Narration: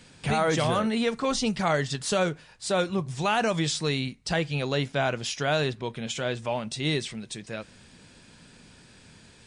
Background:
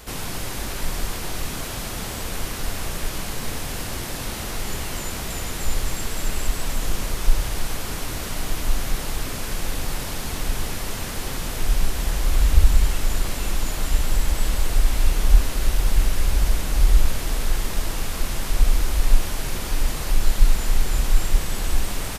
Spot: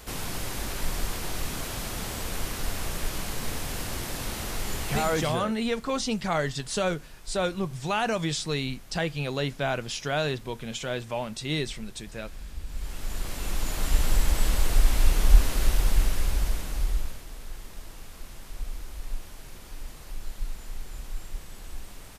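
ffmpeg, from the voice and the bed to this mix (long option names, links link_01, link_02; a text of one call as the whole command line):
ffmpeg -i stem1.wav -i stem2.wav -filter_complex "[0:a]adelay=4650,volume=-2dB[link_01];[1:a]volume=17.5dB,afade=type=out:start_time=5.02:duration=0.38:silence=0.105925,afade=type=in:start_time=12.67:duration=1.37:silence=0.0891251,afade=type=out:start_time=15.62:duration=1.63:silence=0.16788[link_02];[link_01][link_02]amix=inputs=2:normalize=0" out.wav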